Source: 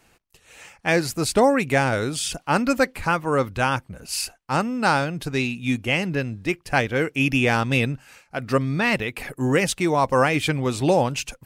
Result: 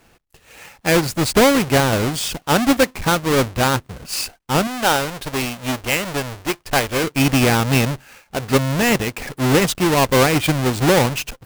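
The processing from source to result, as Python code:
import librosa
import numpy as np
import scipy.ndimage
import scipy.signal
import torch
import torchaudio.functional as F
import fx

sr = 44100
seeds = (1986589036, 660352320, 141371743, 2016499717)

y = fx.halfwave_hold(x, sr)
y = fx.peak_eq(y, sr, hz=170.0, db=-8.5, octaves=1.9, at=(4.67, 7.04))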